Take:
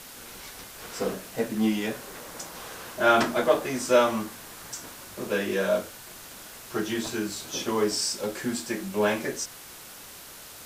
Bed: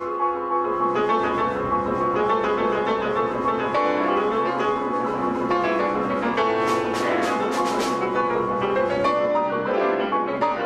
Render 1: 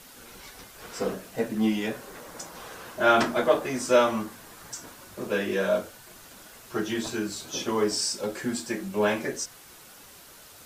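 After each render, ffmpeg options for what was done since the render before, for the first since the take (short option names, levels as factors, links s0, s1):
-af "afftdn=nr=6:nf=-45"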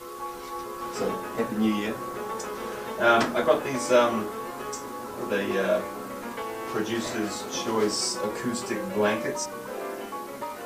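-filter_complex "[1:a]volume=0.224[s0];[0:a][s0]amix=inputs=2:normalize=0"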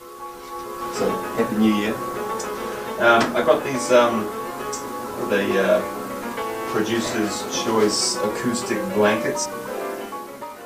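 -af "dynaudnorm=f=150:g=9:m=2.11"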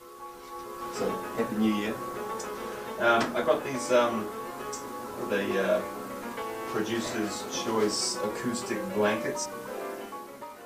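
-af "volume=0.398"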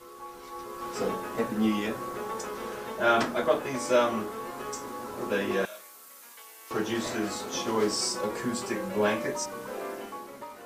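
-filter_complex "[0:a]asettb=1/sr,asplit=3[s0][s1][s2];[s0]atrim=end=5.654[s3];[s1]atrim=start=5.65:end=6.71,asetpts=PTS-STARTPTS,afade=t=in:d=0.004:c=qsin,afade=t=out:st=1.056:d=0.004:c=qsin,aderivative[s4];[s2]atrim=start=6.706[s5];[s3][s4]acrossfade=d=0.004:c1=hsin:c2=qsin[s6];[s6][s5]acrossfade=d=0.004:c1=qsin:c2=hsin"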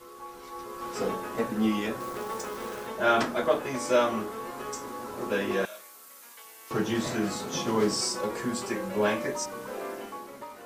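-filter_complex "[0:a]asettb=1/sr,asplit=3[s0][s1][s2];[s0]atrim=end=2.004[s3];[s1]atrim=start=2:end=2.87,asetpts=PTS-STARTPTS,afade=t=in:d=0.004:c=qsin,afade=t=out:st=0.866:d=0.004:c=qsin,acrusher=bits=3:mode=log:mix=0:aa=0.000001[s4];[s2]atrim=start=2.866[s5];[s3][s4]acrossfade=d=0.004:c1=hsin:c2=qsin[s6];[s6][s5]acrossfade=d=0.004:c1=qsin:c2=hsin,asettb=1/sr,asplit=3[s7][s8][s9];[s7]atrim=end=6.454[s10];[s8]atrim=start=6.45:end=8.01,asetpts=PTS-STARTPTS,afade=t=in:d=0.004:c=qsin,afade=t=out:st=1.556:d=0.004:c=qsin,equalizer=f=150:t=o:w=0.77:g=11.5[s11];[s9]atrim=start=8.006[s12];[s10][s11]acrossfade=d=0.004:c1=hsin:c2=qsin[s13];[s13][s12]acrossfade=d=0.004:c1=qsin:c2=hsin"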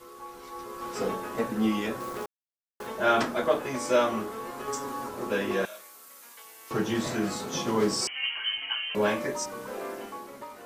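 -filter_complex "[0:a]asettb=1/sr,asplit=3[s0][s1][s2];[s0]atrim=end=4.674[s3];[s1]atrim=start=4.67:end=5.09,asetpts=PTS-STARTPTS,afade=t=in:d=0.004:c=qsin,afade=t=out:st=0.416:d=0.004:c=qsin,aecho=1:1:7.3:0.85,atrim=end_sample=18522[s4];[s2]atrim=start=5.086[s5];[s3][s4]acrossfade=d=0.004:c1=hsin:c2=qsin[s6];[s6][s5]acrossfade=d=0.004:c1=qsin:c2=hsin,asettb=1/sr,asplit=3[s7][s8][s9];[s7]atrim=end=8.074[s10];[s8]atrim=start=8.07:end=8.95,asetpts=PTS-STARTPTS,afade=t=in:d=0.004:c=qsin,afade=t=out:st=0.876:d=0.004:c=qsin,lowpass=f=2800:t=q:w=0.5098,lowpass=f=2800:t=q:w=0.6013,lowpass=f=2800:t=q:w=0.9,lowpass=f=2800:t=q:w=2.563,afreqshift=-3300[s11];[s9]atrim=start=8.946[s12];[s10][s11]acrossfade=d=0.004:c1=hsin:c2=qsin[s13];[s13][s12]acrossfade=d=0.004:c1=qsin:c2=hsin,asplit=3[s14][s15][s16];[s14]atrim=end=2.26,asetpts=PTS-STARTPTS,afade=t=out:st=2.256:d=0.004:c=hsin[s17];[s15]atrim=start=2.26:end=2.8,asetpts=PTS-STARTPTS,volume=0[s18];[s16]atrim=start=2.8,asetpts=PTS-STARTPTS,afade=t=in:d=0.004:c=hsin[s19];[s17][s18][s19]concat=n=3:v=0:a=1"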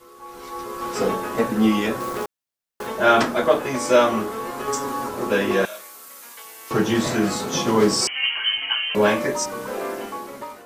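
-af "dynaudnorm=f=210:g=3:m=2.51"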